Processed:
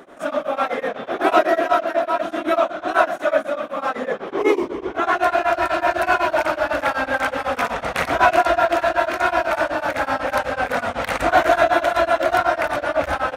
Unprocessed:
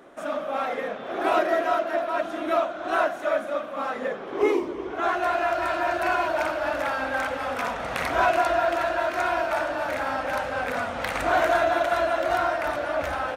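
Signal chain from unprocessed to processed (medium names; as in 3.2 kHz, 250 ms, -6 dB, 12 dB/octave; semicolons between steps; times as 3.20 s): tremolo of two beating tones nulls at 8 Hz; trim +8.5 dB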